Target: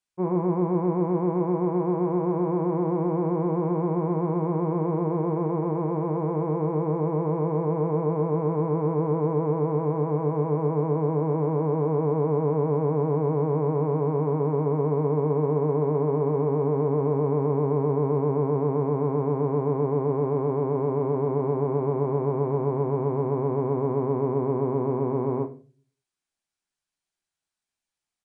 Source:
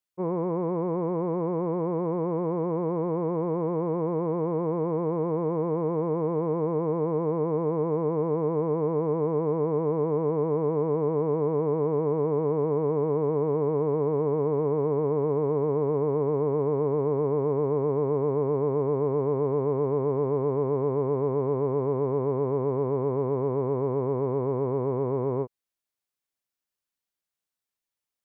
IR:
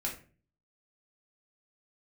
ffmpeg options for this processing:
-filter_complex "[0:a]equalizer=f=520:w=7.9:g=-7.5,asplit=2[s0][s1];[1:a]atrim=start_sample=2205[s2];[s1][s2]afir=irnorm=-1:irlink=0,volume=0.668[s3];[s0][s3]amix=inputs=2:normalize=0,aresample=22050,aresample=44100,volume=0.841"

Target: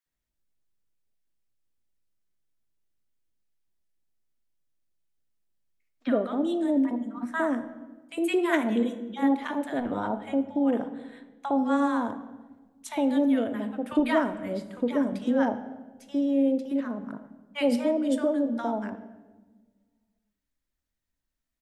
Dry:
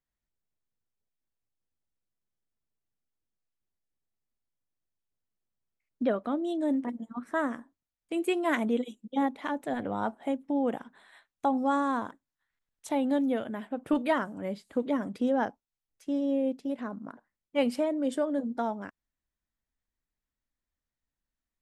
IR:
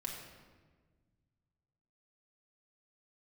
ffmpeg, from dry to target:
-filter_complex "[0:a]asettb=1/sr,asplit=3[s0][s1][s2];[s0]atrim=end=9.974[s3];[s1]atrim=start=9.97:end=11.77,asetpts=PTS-STARTPTS,afade=t=in:d=0.004:c=qsin,afade=t=out:st=1.796:d=0.004:c=qsin,highshelf=f=7000:g=-8[s4];[s2]atrim=start=11.766[s5];[s3][s4]acrossfade=d=0.004:c1=hsin:c2=qsin[s6];[s6][s5]acrossfade=d=0.004:c1=qsin:c2=hsin,acrossover=split=950[s7][s8];[s7]adelay=60[s9];[s9][s8]amix=inputs=2:normalize=0,asplit=2[s10][s11];[1:a]atrim=start_sample=2205,asetrate=52920,aresample=44100[s12];[s11][s12]afir=irnorm=-1:irlink=0,volume=0.75[s13];[s10][s13]amix=inputs=2:normalize=0"

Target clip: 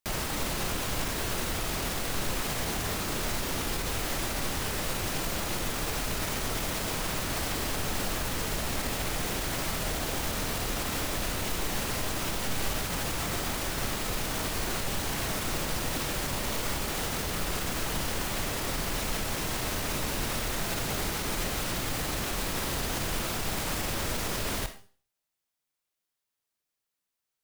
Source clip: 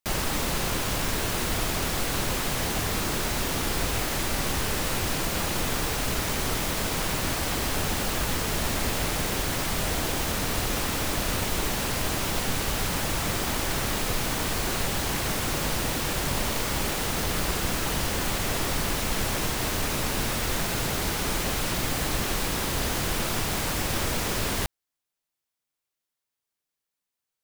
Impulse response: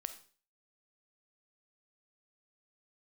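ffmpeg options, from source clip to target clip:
-filter_complex "[0:a]alimiter=limit=0.0794:level=0:latency=1:release=54[s0];[1:a]atrim=start_sample=2205[s1];[s0][s1]afir=irnorm=-1:irlink=0,volume=1.33"

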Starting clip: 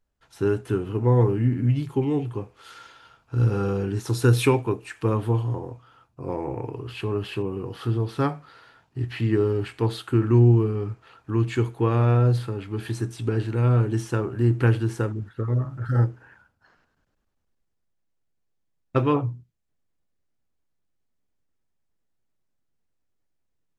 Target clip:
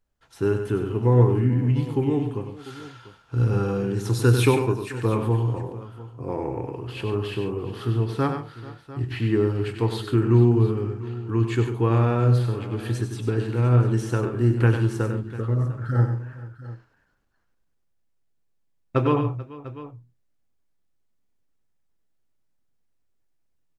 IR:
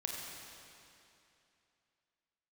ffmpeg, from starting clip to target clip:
-af "aecho=1:1:97|138|437|697:0.422|0.2|0.112|0.141"

